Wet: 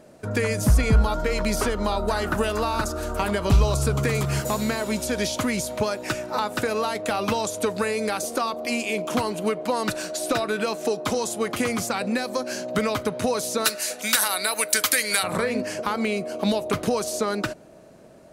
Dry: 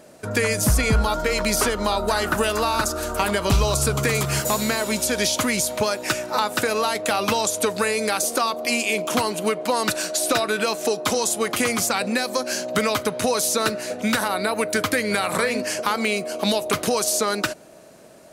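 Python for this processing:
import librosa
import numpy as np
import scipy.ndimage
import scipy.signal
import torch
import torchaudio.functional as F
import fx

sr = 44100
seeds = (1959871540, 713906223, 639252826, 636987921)

y = fx.tilt_eq(x, sr, slope=fx.steps((0.0, -1.5), (13.64, 4.0), (15.22, -2.0)))
y = y * librosa.db_to_amplitude(-3.5)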